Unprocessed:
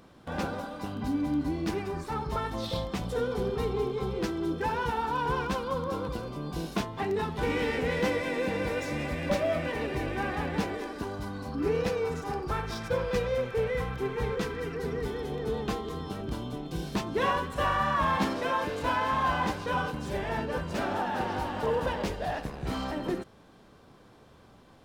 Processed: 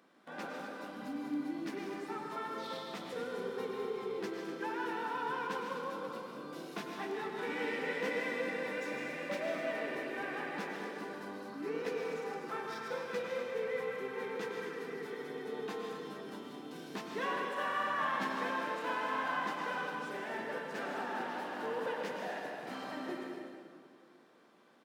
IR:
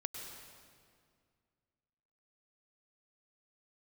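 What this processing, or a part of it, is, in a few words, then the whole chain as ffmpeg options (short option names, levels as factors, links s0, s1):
stadium PA: -filter_complex "[0:a]highpass=f=210:w=0.5412,highpass=f=210:w=1.3066,equalizer=f=1800:t=o:w=0.99:g=5.5,aecho=1:1:151.6|247.8:0.316|0.282[s0];[1:a]atrim=start_sample=2205[s1];[s0][s1]afir=irnorm=-1:irlink=0,volume=0.376"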